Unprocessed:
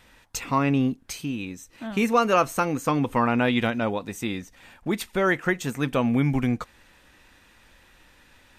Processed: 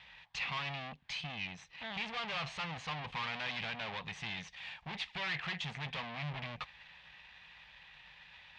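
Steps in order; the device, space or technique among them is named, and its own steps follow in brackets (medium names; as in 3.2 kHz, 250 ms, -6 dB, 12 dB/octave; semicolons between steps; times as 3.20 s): 4.37–4.89 s: treble shelf 3.9 kHz +10 dB; scooped metal amplifier (valve stage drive 38 dB, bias 0.8; cabinet simulation 85–3600 Hz, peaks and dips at 89 Hz -9 dB, 160 Hz +9 dB, 510 Hz -3 dB, 800 Hz +4 dB, 1.4 kHz -8 dB; amplifier tone stack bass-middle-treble 10-0-10); trim +12 dB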